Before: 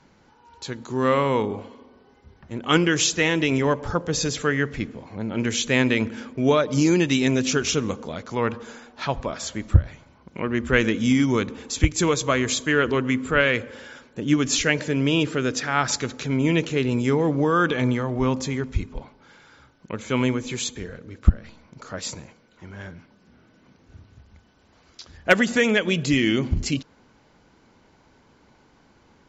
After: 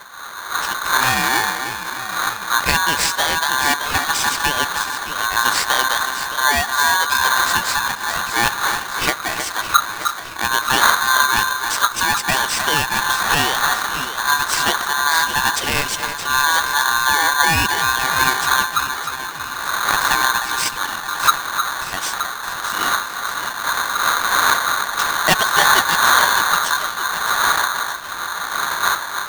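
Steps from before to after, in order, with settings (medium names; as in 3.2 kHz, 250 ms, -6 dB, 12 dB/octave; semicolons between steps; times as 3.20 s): wind noise 300 Hz -27 dBFS; recorder AGC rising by 8 dB/s; high-pass 49 Hz 24 dB/octave; echo whose repeats swap between lows and highs 308 ms, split 1.1 kHz, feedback 74%, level -7 dB; polarity switched at an audio rate 1.3 kHz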